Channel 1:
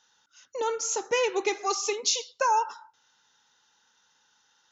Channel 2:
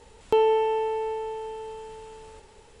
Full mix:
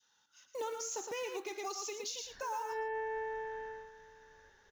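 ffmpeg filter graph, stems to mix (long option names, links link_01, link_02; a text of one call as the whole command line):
ffmpeg -i stem1.wav -i stem2.wav -filter_complex "[0:a]adynamicequalizer=threshold=0.0158:dfrequency=930:dqfactor=0.84:tfrequency=930:tqfactor=0.84:attack=5:release=100:ratio=0.375:range=1.5:mode=cutabove:tftype=bell,acrusher=bits=5:mode=log:mix=0:aa=0.000001,volume=-7dB,asplit=3[link_01][link_02][link_03];[link_02]volume=-8.5dB[link_04];[1:a]lowpass=frequency=1700:width_type=q:width=13,bandreject=frequency=1300:width=11,adelay=2100,volume=-9dB,afade=type=out:start_time=3.68:duration=0.23:silence=0.375837[link_05];[link_03]apad=whole_len=216123[link_06];[link_05][link_06]sidechaincompress=threshold=-46dB:ratio=8:attack=16:release=165[link_07];[link_04]aecho=0:1:112:1[link_08];[link_01][link_07][link_08]amix=inputs=3:normalize=0,alimiter=level_in=6.5dB:limit=-24dB:level=0:latency=1:release=171,volume=-6.5dB" out.wav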